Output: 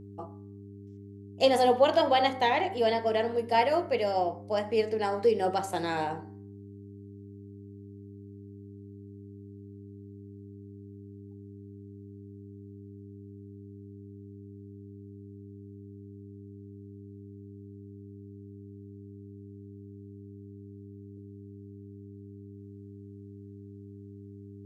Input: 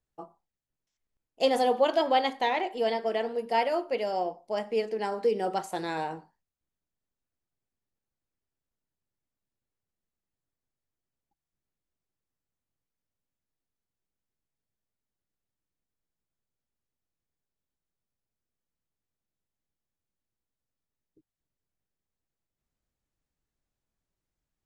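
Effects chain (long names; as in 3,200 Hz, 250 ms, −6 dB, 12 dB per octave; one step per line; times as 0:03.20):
hum with harmonics 100 Hz, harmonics 4, −48 dBFS −3 dB per octave
hum removal 64.56 Hz, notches 35
level +2 dB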